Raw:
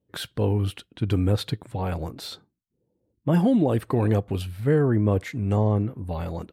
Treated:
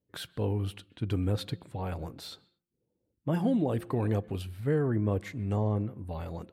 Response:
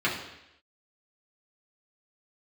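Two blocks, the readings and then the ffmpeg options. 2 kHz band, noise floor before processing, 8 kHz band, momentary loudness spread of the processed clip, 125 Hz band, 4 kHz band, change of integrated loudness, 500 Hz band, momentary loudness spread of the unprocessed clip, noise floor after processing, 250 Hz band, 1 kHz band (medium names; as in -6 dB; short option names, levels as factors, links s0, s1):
-7.0 dB, -77 dBFS, -7.0 dB, 12 LU, -7.0 dB, -7.0 dB, -7.0 dB, -7.0 dB, 12 LU, -82 dBFS, -7.0 dB, -7.0 dB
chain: -filter_complex "[0:a]bandreject=f=174.7:t=h:w=4,bandreject=f=349.4:t=h:w=4,bandreject=f=524.1:t=h:w=4,asplit=2[s0][s1];[1:a]atrim=start_sample=2205,afade=t=out:st=0.17:d=0.01,atrim=end_sample=7938,adelay=126[s2];[s1][s2]afir=irnorm=-1:irlink=0,volume=0.0178[s3];[s0][s3]amix=inputs=2:normalize=0,volume=0.447"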